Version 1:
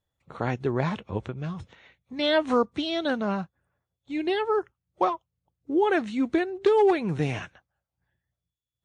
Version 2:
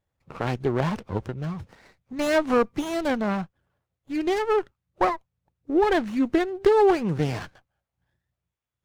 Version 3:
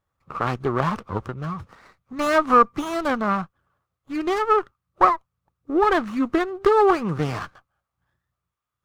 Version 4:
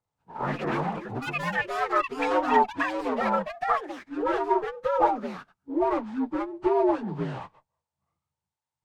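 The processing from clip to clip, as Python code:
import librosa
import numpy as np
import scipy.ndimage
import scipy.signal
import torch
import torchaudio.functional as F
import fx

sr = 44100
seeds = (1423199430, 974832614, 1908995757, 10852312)

y1 = fx.running_max(x, sr, window=9)
y1 = y1 * 10.0 ** (2.5 / 20.0)
y2 = fx.peak_eq(y1, sr, hz=1200.0, db=14.5, octaves=0.45)
y3 = fx.partial_stretch(y2, sr, pct=81)
y3 = fx.echo_pitch(y3, sr, ms=149, semitones=6, count=3, db_per_echo=-3.0)
y3 = y3 * 10.0 ** (-5.0 / 20.0)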